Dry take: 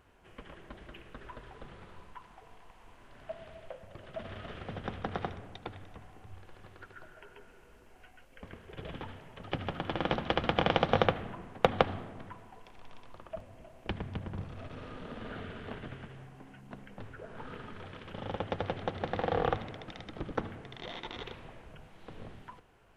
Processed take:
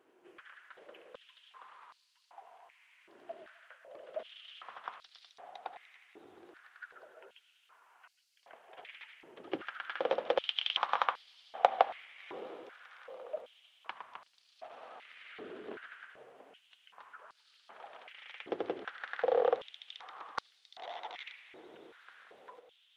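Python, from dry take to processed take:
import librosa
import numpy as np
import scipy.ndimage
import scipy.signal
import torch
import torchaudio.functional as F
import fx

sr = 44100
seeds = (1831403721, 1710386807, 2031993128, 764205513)

y = fx.echo_diffused(x, sr, ms=696, feedback_pct=51, wet_db=-15.5)
y = fx.vibrato(y, sr, rate_hz=11.0, depth_cents=84.0)
y = fx.filter_held_highpass(y, sr, hz=2.6, low_hz=350.0, high_hz=4500.0)
y = F.gain(torch.from_numpy(y), -6.5).numpy()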